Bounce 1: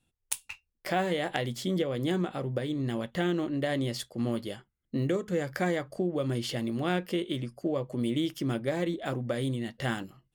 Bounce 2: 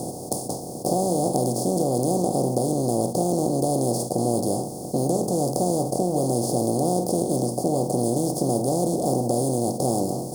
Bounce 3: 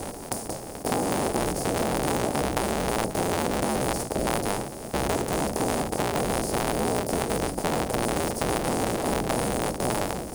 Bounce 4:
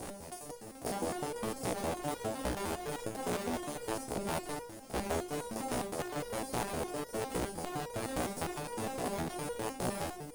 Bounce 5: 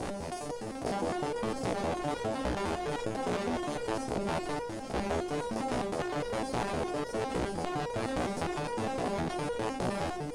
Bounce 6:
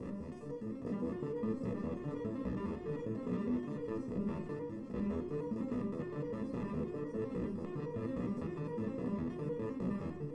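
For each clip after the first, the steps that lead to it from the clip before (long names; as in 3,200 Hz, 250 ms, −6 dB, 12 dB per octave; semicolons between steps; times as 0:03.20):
compressor on every frequency bin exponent 0.2; elliptic band-stop filter 840–5,100 Hz, stop band 60 dB
sub-harmonics by changed cycles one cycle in 3, inverted; level −3.5 dB
step-sequenced resonator 9.8 Hz 61–480 Hz
high-frequency loss of the air 80 metres; envelope flattener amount 50%; level +2 dB
moving average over 58 samples; convolution reverb RT60 1.0 s, pre-delay 3 ms, DRR 6 dB; level +4.5 dB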